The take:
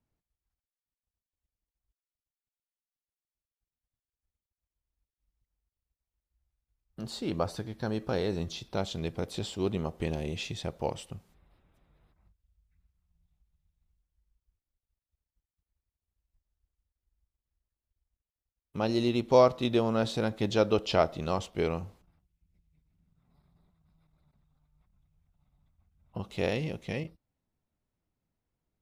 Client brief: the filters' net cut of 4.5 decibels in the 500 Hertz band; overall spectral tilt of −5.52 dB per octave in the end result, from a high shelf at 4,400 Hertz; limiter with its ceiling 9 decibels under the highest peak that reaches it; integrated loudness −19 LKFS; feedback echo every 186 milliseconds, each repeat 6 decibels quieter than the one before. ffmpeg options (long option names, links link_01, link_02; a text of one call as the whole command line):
ffmpeg -i in.wav -af "equalizer=frequency=500:width_type=o:gain=-5.5,highshelf=frequency=4400:gain=-7,alimiter=limit=-21.5dB:level=0:latency=1,aecho=1:1:186|372|558|744|930|1116:0.501|0.251|0.125|0.0626|0.0313|0.0157,volume=15.5dB" out.wav